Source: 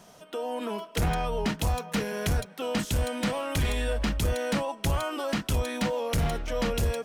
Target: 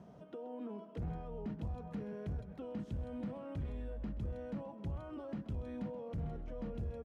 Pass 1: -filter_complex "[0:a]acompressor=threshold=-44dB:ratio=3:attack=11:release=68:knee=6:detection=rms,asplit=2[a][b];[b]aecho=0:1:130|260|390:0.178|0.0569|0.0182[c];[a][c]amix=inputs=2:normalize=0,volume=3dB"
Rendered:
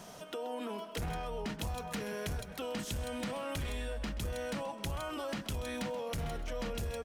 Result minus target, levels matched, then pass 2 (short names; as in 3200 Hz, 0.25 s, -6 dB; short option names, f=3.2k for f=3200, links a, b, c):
125 Hz band -3.5 dB
-filter_complex "[0:a]acompressor=threshold=-44dB:ratio=3:attack=11:release=68:knee=6:detection=rms,bandpass=f=130:t=q:w=0.53:csg=0,asplit=2[a][b];[b]aecho=0:1:130|260|390:0.178|0.0569|0.0182[c];[a][c]amix=inputs=2:normalize=0,volume=3dB"